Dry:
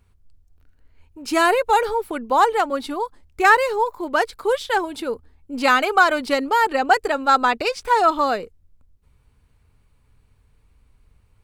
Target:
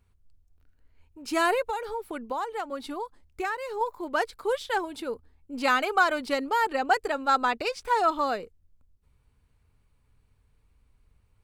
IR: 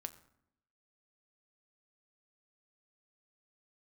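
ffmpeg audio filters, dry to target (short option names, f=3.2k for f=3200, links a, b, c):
-filter_complex "[0:a]asettb=1/sr,asplit=3[a][b][c];[a]atrim=end=1.694[d];[b]atrim=start=1.69:end=3.81,asetpts=PTS-STARTPTS,afade=t=in:d=0.004:c=qsin,afade=t=out:st=2.116:d=0.004:c=qsin,acompressor=threshold=-22dB:ratio=5[e];[c]atrim=start=3.806[f];[d][e]acrossfade=d=0.004:c1=hsin:c2=qsin[g];[g][f]acrossfade=d=0.004:c1=qsin:c2=hsin,volume=-7dB"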